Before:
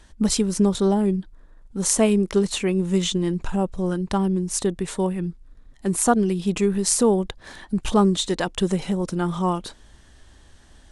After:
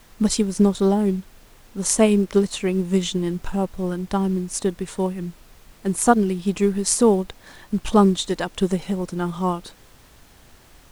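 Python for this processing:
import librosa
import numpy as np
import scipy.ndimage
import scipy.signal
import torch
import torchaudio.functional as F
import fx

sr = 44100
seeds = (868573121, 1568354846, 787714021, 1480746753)

y = fx.dmg_noise_colour(x, sr, seeds[0], colour='pink', level_db=-48.0)
y = fx.upward_expand(y, sr, threshold_db=-28.0, expansion=1.5)
y = y * librosa.db_to_amplitude(3.5)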